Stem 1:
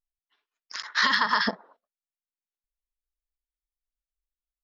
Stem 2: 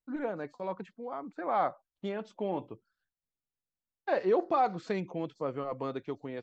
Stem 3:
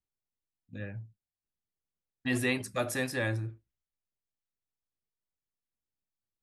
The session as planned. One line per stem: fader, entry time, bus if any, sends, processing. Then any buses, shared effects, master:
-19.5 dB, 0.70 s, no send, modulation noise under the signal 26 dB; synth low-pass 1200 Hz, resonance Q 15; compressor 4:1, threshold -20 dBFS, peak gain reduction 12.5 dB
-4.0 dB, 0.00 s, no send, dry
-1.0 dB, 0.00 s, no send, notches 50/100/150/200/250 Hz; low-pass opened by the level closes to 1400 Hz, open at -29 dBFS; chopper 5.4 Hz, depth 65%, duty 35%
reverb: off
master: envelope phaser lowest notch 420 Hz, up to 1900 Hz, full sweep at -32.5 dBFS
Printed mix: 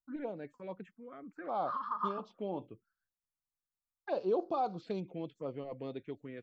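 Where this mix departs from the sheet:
stem 1: missing compressor 4:1, threshold -20 dBFS, peak gain reduction 12.5 dB; stem 3: muted

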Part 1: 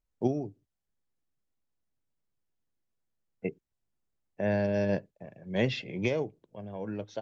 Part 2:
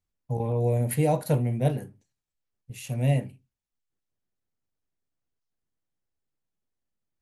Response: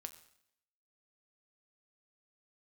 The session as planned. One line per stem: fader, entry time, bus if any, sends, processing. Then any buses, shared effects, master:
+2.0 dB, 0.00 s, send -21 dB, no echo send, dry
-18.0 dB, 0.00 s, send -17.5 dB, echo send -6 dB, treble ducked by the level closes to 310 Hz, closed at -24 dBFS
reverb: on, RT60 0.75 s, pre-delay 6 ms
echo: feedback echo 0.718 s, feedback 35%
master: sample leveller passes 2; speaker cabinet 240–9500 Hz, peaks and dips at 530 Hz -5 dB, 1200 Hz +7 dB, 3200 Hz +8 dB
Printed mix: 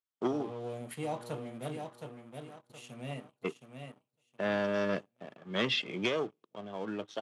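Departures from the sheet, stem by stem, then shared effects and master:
stem 1 +2.0 dB -> -6.0 dB; stem 2: missing treble ducked by the level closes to 310 Hz, closed at -24 dBFS

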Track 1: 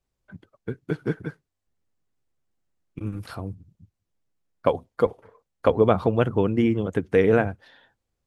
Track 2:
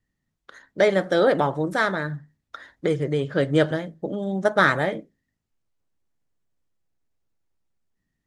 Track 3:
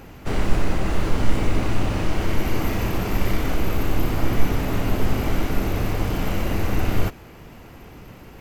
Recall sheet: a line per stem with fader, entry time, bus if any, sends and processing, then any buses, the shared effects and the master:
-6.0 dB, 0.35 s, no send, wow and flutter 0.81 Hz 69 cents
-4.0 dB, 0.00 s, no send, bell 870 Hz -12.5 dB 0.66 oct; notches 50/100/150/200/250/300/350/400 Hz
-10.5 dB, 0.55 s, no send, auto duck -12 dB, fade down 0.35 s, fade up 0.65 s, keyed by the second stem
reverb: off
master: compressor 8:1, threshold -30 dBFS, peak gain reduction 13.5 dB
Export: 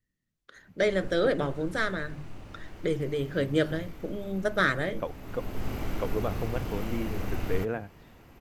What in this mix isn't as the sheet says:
stem 1 -6.0 dB -> -13.0 dB; master: missing compressor 8:1, threshold -30 dBFS, peak gain reduction 13.5 dB

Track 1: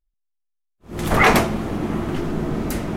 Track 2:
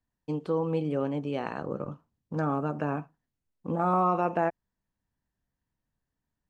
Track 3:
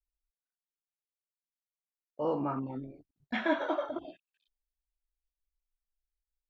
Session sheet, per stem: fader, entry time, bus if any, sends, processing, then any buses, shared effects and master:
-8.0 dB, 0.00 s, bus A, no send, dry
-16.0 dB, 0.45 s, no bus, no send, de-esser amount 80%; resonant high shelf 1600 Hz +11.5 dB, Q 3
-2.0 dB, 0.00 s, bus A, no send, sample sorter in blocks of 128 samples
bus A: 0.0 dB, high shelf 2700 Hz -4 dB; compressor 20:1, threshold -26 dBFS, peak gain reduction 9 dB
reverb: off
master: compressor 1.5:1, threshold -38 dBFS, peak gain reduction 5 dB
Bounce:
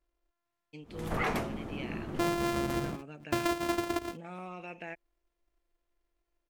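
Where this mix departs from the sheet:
stem 1 -8.0 dB -> -14.5 dB; stem 3 -2.0 dB -> +8.5 dB; master: missing compressor 1.5:1, threshold -38 dBFS, peak gain reduction 5 dB

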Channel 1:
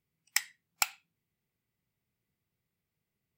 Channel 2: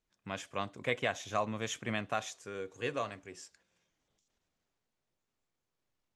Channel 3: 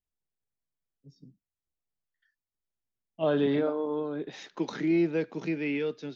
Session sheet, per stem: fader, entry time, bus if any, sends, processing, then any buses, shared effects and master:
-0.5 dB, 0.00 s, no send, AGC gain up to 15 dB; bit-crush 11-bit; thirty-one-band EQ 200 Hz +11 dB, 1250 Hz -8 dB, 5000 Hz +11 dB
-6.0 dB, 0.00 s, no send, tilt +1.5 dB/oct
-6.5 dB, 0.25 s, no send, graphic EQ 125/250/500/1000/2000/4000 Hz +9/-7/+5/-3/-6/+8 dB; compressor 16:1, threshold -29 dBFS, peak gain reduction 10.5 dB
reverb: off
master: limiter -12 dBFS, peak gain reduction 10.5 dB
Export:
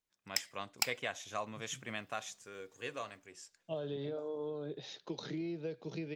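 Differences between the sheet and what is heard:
stem 1 -0.5 dB -> -11.0 dB; stem 3: entry 0.25 s -> 0.50 s

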